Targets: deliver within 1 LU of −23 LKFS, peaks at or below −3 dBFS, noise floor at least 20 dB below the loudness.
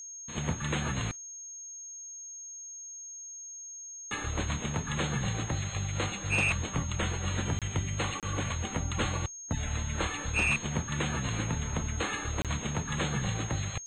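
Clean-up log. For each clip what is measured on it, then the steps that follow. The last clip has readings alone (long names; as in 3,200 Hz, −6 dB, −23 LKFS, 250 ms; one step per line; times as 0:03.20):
number of dropouts 3; longest dropout 27 ms; interfering tone 6,500 Hz; level of the tone −41 dBFS; integrated loudness −32.5 LKFS; sample peak −19.0 dBFS; target loudness −23.0 LKFS
→ repair the gap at 0:07.59/0:08.20/0:12.42, 27 ms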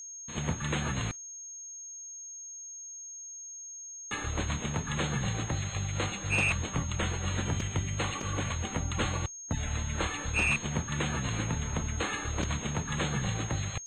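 number of dropouts 0; interfering tone 6,500 Hz; level of the tone −41 dBFS
→ notch filter 6,500 Hz, Q 30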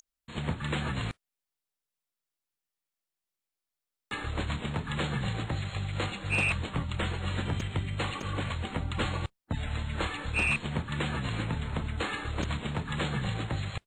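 interfering tone none found; integrated loudness −32.5 LKFS; sample peak −18.0 dBFS; target loudness −23.0 LKFS
→ level +9.5 dB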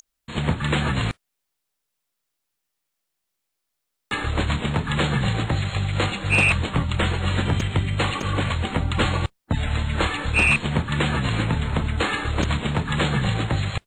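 integrated loudness −23.0 LKFS; sample peak −8.5 dBFS; background noise floor −80 dBFS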